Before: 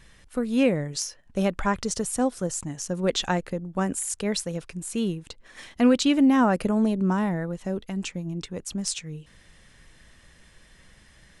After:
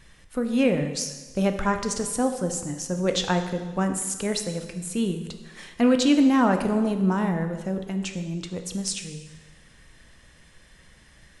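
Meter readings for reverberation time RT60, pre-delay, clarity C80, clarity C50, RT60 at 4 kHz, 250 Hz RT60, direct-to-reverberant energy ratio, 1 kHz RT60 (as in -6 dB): 1.3 s, 6 ms, 10.0 dB, 8.5 dB, 1.2 s, 1.3 s, 6.0 dB, 1.3 s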